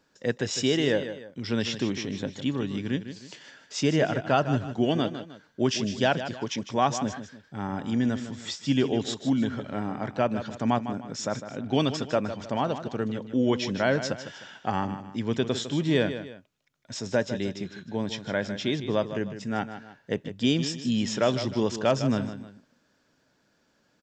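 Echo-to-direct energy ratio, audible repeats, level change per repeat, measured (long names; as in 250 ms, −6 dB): −10.5 dB, 2, −8.5 dB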